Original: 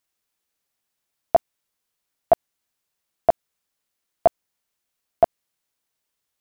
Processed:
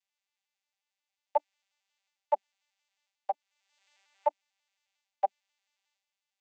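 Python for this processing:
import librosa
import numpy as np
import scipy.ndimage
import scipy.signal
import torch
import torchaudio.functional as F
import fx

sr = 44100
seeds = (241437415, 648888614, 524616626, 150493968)

y = fx.vocoder_arp(x, sr, chord='bare fifth', root=55, every_ms=90)
y = fx.high_shelf_res(y, sr, hz=1600.0, db=12.0, q=1.5)
y = fx.transient(y, sr, attack_db=-4, sustain_db=7)
y = fx.ladder_highpass(y, sr, hz=690.0, resonance_pct=65)
y = fx.band_squash(y, sr, depth_pct=100, at=(3.29, 4.26))
y = y * librosa.db_to_amplitude(1.5)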